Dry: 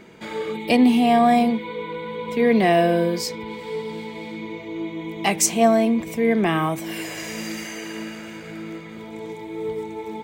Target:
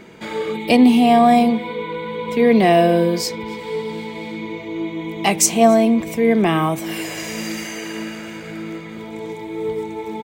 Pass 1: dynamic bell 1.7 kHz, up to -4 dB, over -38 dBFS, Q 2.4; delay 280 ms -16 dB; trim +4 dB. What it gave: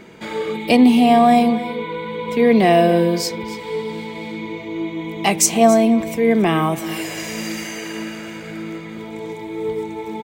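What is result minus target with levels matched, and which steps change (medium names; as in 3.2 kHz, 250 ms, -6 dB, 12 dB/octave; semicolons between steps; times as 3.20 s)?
echo-to-direct +9.5 dB
change: delay 280 ms -25.5 dB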